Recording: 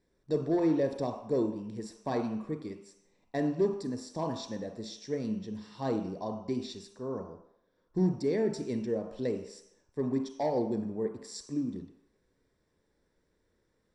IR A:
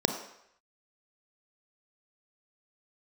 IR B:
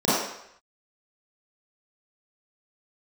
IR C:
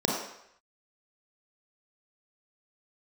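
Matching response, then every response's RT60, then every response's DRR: A; 0.75, 0.75, 0.75 seconds; 6.0, −12.0, −2.5 decibels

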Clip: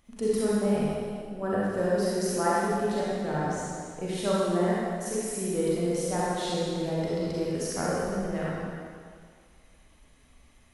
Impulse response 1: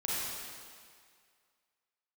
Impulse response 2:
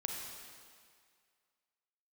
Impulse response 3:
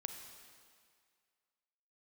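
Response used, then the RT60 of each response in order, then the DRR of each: 1; 2.0, 2.0, 2.0 seconds; −7.5, 0.5, 5.5 decibels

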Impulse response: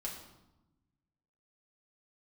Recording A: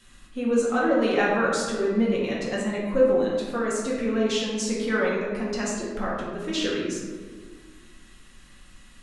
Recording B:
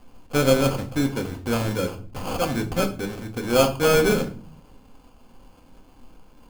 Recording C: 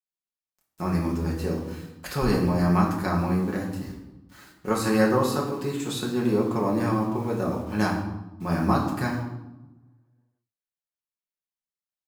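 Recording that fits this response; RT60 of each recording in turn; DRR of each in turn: C; 1.6, 0.45, 0.95 seconds; −5.5, 4.5, −3.5 decibels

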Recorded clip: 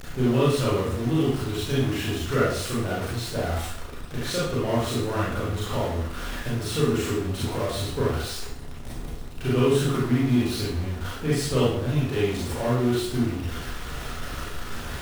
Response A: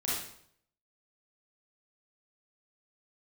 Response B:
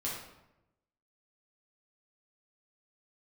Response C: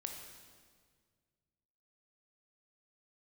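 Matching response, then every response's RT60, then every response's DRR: A; 0.65, 0.90, 1.8 seconds; −7.5, −6.0, 2.5 decibels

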